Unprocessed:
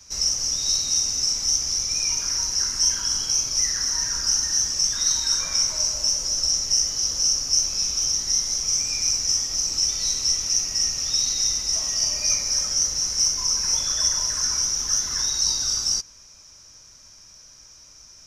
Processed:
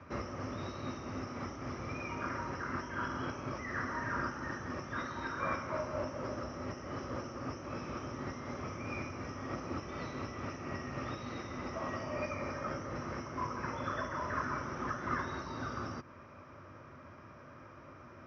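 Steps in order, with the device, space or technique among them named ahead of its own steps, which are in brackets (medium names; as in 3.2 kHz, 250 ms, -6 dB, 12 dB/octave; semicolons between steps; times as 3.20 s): bass amplifier (compression, threshold -26 dBFS, peak gain reduction 10.5 dB; cabinet simulation 75–2100 Hz, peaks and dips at 98 Hz +5 dB, 140 Hz +5 dB, 250 Hz +9 dB, 350 Hz +9 dB, 570 Hz +8 dB, 1.2 kHz +9 dB); trim +4.5 dB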